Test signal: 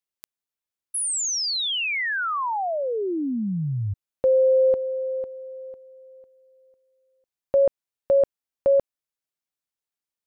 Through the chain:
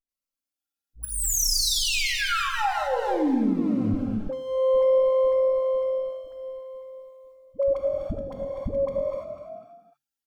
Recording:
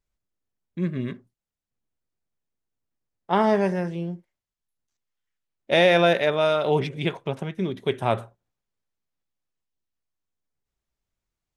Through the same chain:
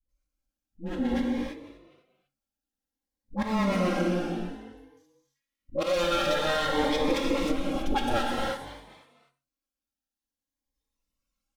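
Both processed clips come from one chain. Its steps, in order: minimum comb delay 3.6 ms; dispersion highs, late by 88 ms, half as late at 450 Hz; on a send: frequency-shifting echo 0.248 s, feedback 36%, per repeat +46 Hz, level -18 dB; on the sum: spectral noise reduction 12 dB; auto swell 0.395 s; in parallel at +2 dB: vocal rider within 3 dB 0.5 s; on the sum: comb 3.8 ms, depth 47%; non-linear reverb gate 0.36 s flat, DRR 0.5 dB; compressor 2.5:1, threshold -26 dBFS; cascading phaser rising 0.54 Hz; gain +2 dB

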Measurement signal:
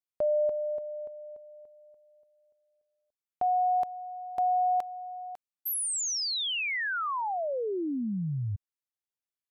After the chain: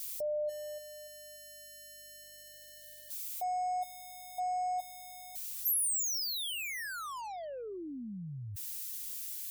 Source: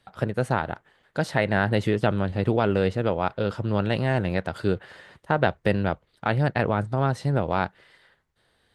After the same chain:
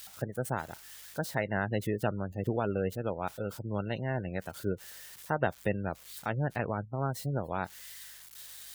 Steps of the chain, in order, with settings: switching spikes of -23 dBFS; spectral gate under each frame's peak -25 dB strong; hum 50 Hz, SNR 32 dB; upward expander 1.5:1, over -35 dBFS; gain -6.5 dB

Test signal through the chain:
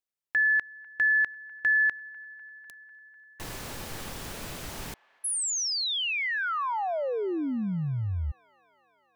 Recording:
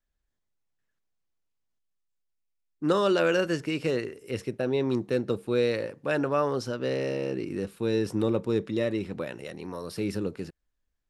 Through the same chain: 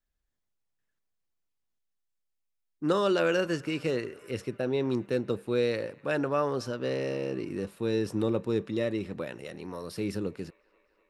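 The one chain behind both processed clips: band-limited delay 0.249 s, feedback 76%, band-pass 1400 Hz, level -23.5 dB; gain -2 dB

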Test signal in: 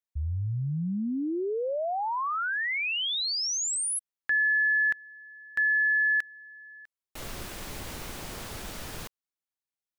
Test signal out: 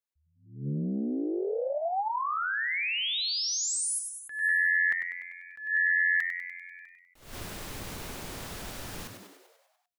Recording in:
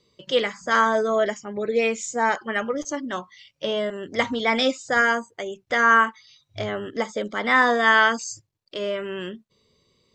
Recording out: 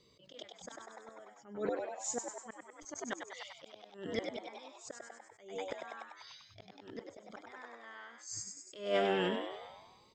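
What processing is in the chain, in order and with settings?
flipped gate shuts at -17 dBFS, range -33 dB; frequency-shifting echo 98 ms, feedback 61%, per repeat +88 Hz, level -7 dB; attack slew limiter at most 120 dB/s; gain -2 dB

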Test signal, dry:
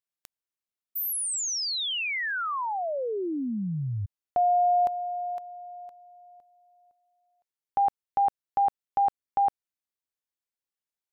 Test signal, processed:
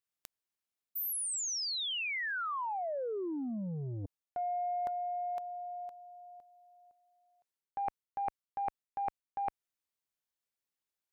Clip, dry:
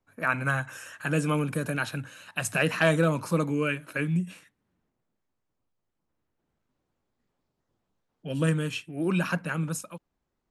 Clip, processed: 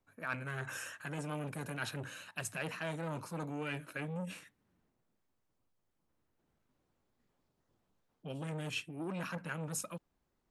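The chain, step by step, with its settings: reverse; compressor 5:1, threshold -35 dBFS; reverse; core saturation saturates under 820 Hz

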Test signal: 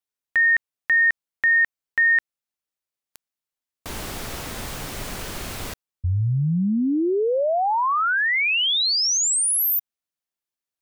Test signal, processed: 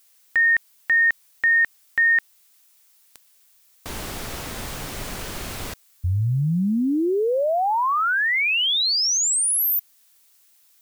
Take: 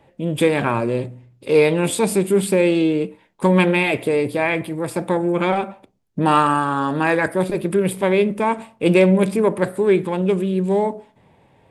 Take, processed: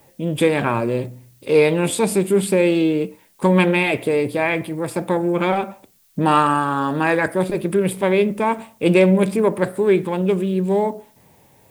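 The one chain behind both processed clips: added noise blue -58 dBFS

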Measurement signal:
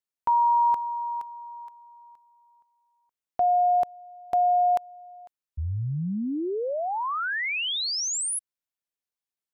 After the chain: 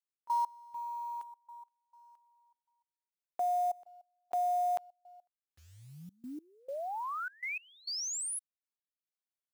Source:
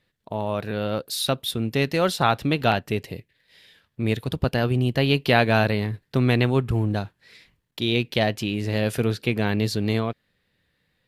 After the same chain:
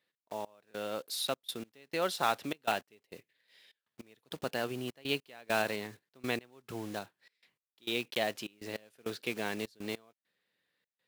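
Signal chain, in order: block floating point 5-bit; Bessel high-pass 370 Hz, order 2; step gate "x.x..xxx" 101 bpm -24 dB; gain -8.5 dB

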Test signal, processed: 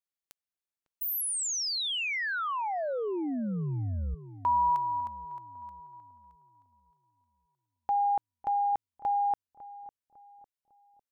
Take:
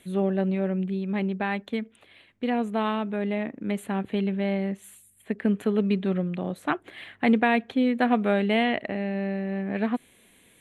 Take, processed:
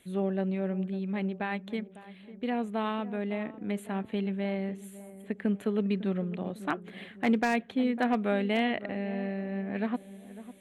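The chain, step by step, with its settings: darkening echo 0.552 s, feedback 46%, low-pass 1000 Hz, level -14.5 dB; wavefolder -11.5 dBFS; gain -5 dB

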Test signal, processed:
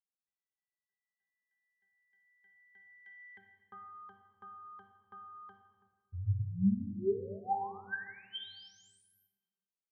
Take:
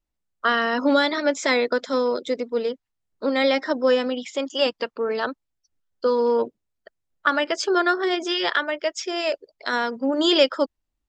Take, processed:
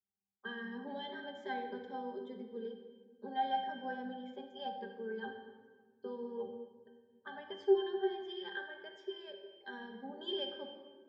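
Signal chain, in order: HPF 90 Hz 12 dB/oct; octave resonator G, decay 0.31 s; shoebox room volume 1800 m³, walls mixed, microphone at 1.3 m; gain +1 dB

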